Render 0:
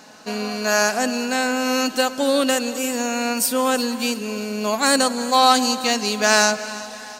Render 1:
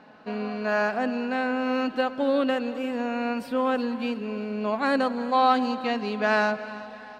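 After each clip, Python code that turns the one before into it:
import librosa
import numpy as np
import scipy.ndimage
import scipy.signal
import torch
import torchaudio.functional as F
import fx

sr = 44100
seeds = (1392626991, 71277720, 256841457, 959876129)

y = fx.air_absorb(x, sr, metres=440.0)
y = y * 10.0 ** (-3.0 / 20.0)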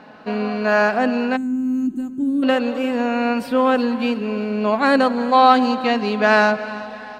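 y = fx.spec_box(x, sr, start_s=1.36, length_s=1.07, low_hz=390.0, high_hz=6200.0, gain_db=-28)
y = y * 10.0 ** (8.0 / 20.0)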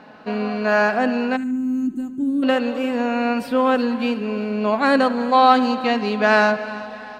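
y = fx.echo_banded(x, sr, ms=73, feedback_pct=40, hz=1900.0, wet_db=-15.5)
y = y * 10.0 ** (-1.0 / 20.0)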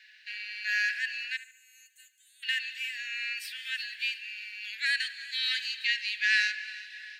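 y = scipy.signal.sosfilt(scipy.signal.butter(16, 1700.0, 'highpass', fs=sr, output='sos'), x)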